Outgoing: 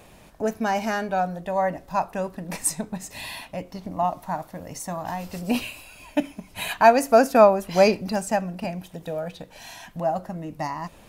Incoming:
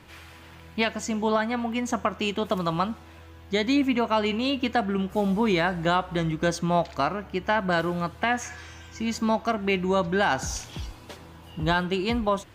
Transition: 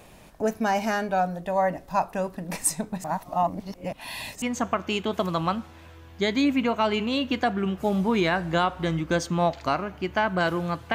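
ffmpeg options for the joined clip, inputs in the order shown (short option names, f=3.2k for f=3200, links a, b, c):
-filter_complex "[0:a]apad=whole_dur=10.94,atrim=end=10.94,asplit=2[a][b];[a]atrim=end=3.042[c];[b]atrim=start=3.038:end=4.422,asetpts=PTS-STARTPTS,areverse[d];[1:a]atrim=start=1.738:end=8.26[e];[c][d]acrossfade=d=0.004:c1=hsin:c2=hsin[f];[f][e]acrossfade=d=0.004:c1=hsin:c2=hsin"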